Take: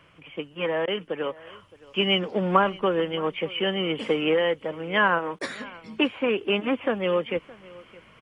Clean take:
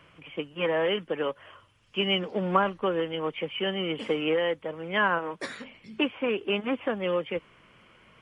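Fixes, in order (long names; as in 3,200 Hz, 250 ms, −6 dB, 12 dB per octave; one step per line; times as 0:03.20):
repair the gap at 0:00.86/0:05.39, 15 ms
echo removal 617 ms −21.5 dB
level correction −3.5 dB, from 0:01.47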